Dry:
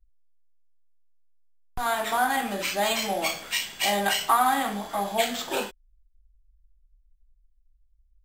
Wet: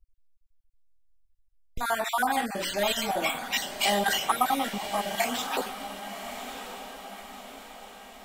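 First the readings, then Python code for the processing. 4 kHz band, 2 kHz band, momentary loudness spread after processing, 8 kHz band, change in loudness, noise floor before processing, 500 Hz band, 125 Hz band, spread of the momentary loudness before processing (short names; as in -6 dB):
-1.0 dB, -1.5 dB, 18 LU, -1.5 dB, -2.5 dB, -64 dBFS, -1.5 dB, -1.0 dB, 9 LU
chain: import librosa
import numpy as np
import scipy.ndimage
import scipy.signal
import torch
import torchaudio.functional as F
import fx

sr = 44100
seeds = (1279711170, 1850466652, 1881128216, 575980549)

y = fx.spec_dropout(x, sr, seeds[0], share_pct=34)
y = fx.echo_diffused(y, sr, ms=1142, feedback_pct=52, wet_db=-10.0)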